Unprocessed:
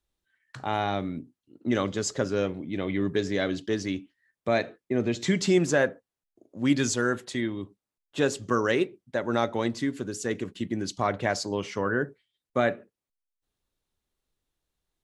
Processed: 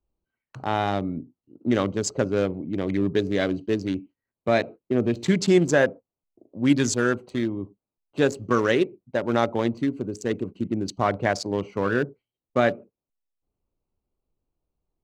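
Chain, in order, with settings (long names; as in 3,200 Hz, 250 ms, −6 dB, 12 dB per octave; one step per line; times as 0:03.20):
adaptive Wiener filter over 25 samples
level +4 dB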